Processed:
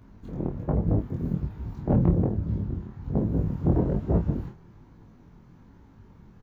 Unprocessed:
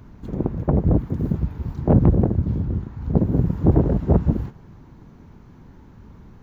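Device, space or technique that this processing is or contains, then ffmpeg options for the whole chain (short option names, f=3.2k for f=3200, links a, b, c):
double-tracked vocal: -filter_complex "[0:a]asplit=2[a][b];[b]adelay=29,volume=-7.5dB[c];[a][c]amix=inputs=2:normalize=0,flanger=delay=18:depth=5.7:speed=1.2,volume=-4dB"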